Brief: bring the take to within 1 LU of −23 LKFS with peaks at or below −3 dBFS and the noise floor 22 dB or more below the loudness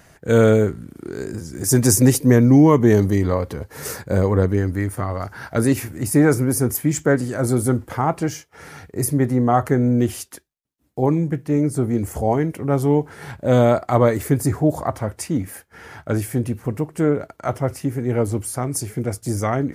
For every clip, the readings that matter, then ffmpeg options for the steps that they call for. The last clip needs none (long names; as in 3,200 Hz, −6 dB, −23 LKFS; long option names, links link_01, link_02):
integrated loudness −19.5 LKFS; sample peak −1.5 dBFS; target loudness −23.0 LKFS
→ -af "volume=-3.5dB"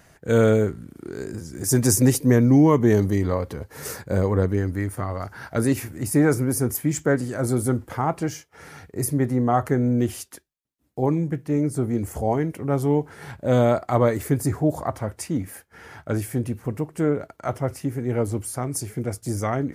integrated loudness −23.0 LKFS; sample peak −5.0 dBFS; background noise floor −59 dBFS